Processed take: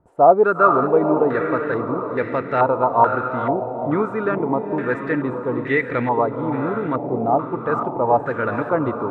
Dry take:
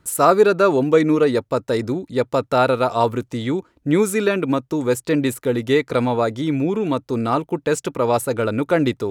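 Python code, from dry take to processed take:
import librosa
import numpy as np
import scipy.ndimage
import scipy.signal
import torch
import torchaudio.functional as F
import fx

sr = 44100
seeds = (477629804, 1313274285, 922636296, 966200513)

y = fx.echo_diffused(x, sr, ms=465, feedback_pct=53, wet_db=-6)
y = fx.filter_held_lowpass(y, sr, hz=2.3, low_hz=750.0, high_hz=1900.0)
y = y * librosa.db_to_amplitude(-5.0)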